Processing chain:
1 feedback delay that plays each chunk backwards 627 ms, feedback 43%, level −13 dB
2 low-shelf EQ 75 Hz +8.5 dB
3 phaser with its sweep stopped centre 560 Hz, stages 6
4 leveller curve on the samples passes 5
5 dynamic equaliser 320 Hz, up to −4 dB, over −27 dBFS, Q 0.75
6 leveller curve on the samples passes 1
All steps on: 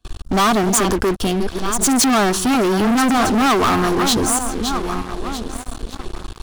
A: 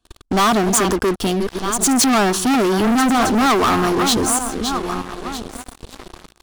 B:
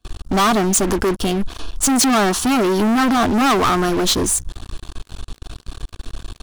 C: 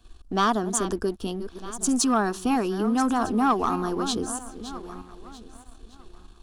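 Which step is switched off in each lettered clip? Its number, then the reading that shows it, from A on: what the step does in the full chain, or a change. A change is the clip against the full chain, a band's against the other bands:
2, change in momentary loudness spread −3 LU
1, change in momentary loudness spread +6 LU
4, change in crest factor +7.5 dB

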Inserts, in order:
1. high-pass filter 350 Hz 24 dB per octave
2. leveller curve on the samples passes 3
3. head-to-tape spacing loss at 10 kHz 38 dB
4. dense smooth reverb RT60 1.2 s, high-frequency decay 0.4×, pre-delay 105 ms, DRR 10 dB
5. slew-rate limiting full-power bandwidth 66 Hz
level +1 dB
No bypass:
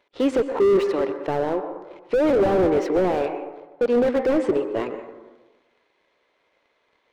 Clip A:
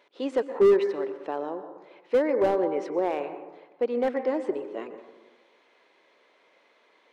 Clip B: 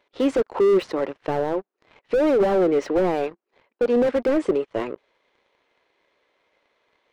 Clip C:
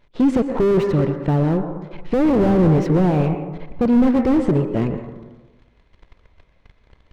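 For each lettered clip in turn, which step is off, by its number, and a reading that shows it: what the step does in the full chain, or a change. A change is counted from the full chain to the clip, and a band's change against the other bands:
2, change in integrated loudness −5.0 LU
4, change in momentary loudness spread −3 LU
1, 125 Hz band +18.0 dB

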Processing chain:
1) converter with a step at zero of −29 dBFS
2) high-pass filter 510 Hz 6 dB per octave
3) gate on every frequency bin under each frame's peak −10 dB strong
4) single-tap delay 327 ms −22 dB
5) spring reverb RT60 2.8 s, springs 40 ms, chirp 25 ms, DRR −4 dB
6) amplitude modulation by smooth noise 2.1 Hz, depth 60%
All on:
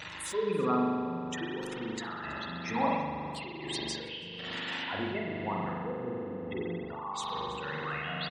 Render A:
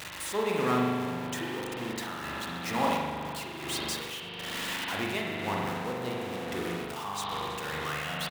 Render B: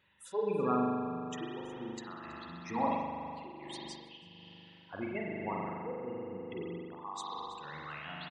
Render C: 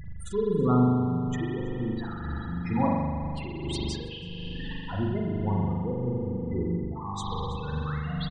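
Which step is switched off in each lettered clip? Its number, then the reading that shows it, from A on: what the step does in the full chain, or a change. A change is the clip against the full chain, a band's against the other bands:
3, 8 kHz band +4.0 dB
1, distortion level −6 dB
2, 125 Hz band +15.5 dB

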